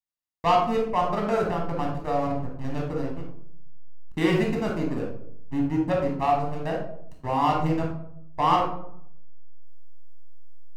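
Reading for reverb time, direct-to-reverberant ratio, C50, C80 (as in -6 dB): 0.70 s, -0.5 dB, 4.0 dB, 8.5 dB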